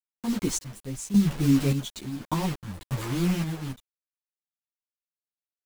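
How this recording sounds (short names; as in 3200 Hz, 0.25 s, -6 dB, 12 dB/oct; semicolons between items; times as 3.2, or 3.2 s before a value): a quantiser's noise floor 6-bit, dither none; random-step tremolo, depth 85%; a shimmering, thickened sound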